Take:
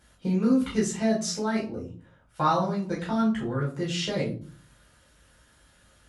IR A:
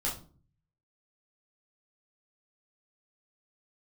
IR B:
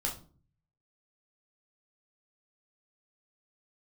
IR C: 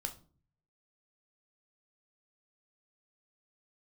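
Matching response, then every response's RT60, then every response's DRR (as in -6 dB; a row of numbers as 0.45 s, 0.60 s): A; 0.40 s, 0.40 s, 0.40 s; -6.0 dB, -2.0 dB, 5.0 dB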